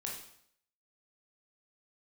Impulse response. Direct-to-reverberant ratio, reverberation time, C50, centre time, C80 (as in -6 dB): -2.5 dB, 0.65 s, 4.0 dB, 39 ms, 8.0 dB